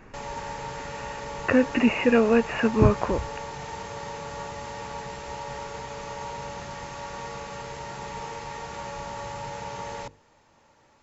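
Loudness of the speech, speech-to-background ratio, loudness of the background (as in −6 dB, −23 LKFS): −22.5 LKFS, 13.5 dB, −36.0 LKFS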